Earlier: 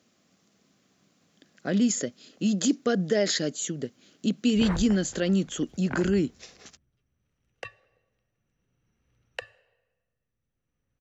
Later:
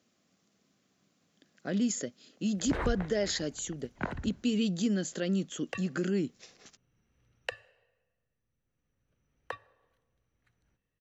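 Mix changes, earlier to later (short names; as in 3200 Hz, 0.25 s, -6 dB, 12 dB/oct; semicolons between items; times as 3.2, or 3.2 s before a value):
speech -6.0 dB; background: entry -1.90 s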